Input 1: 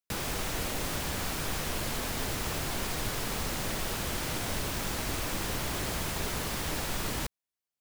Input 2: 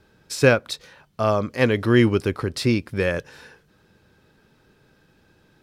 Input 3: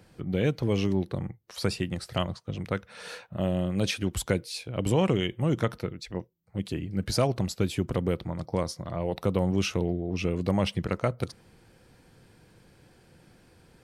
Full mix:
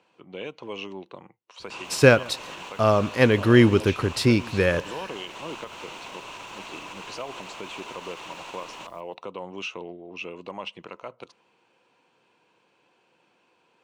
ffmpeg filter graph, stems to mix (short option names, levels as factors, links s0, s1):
-filter_complex "[0:a]alimiter=level_in=1.33:limit=0.0631:level=0:latency=1:release=66,volume=0.75,adelay=1600,volume=0.708,asplit=2[s0][s1];[s1]volume=0.0841[s2];[1:a]adelay=1600,volume=1.12,asplit=2[s3][s4];[s4]volume=0.0668[s5];[2:a]volume=0.531[s6];[s0][s6]amix=inputs=2:normalize=0,highpass=370,equalizer=f=1000:t=q:w=4:g=10,equalizer=f=1800:t=q:w=4:g=-5,equalizer=f=2700:t=q:w=4:g=10,equalizer=f=5000:t=q:w=4:g=-8,lowpass=f=6800:w=0.5412,lowpass=f=6800:w=1.3066,alimiter=limit=0.0668:level=0:latency=1:release=104,volume=1[s7];[s2][s5]amix=inputs=2:normalize=0,aecho=0:1:138|276|414:1|0.18|0.0324[s8];[s3][s7][s8]amix=inputs=3:normalize=0"